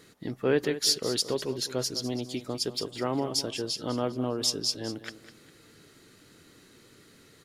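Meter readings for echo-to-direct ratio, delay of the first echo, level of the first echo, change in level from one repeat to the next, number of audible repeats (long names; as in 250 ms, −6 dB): −13.0 dB, 202 ms, −13.5 dB, −9.5 dB, 3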